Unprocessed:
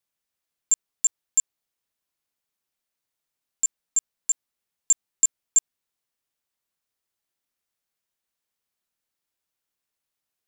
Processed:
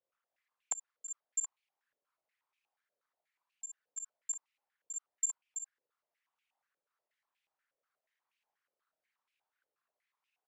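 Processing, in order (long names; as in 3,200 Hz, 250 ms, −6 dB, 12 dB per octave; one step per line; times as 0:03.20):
spectral envelope exaggerated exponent 2
ambience of single reflections 35 ms −11 dB, 56 ms −4.5 dB
band-pass on a step sequencer 8.3 Hz 520–2,500 Hz
level +10 dB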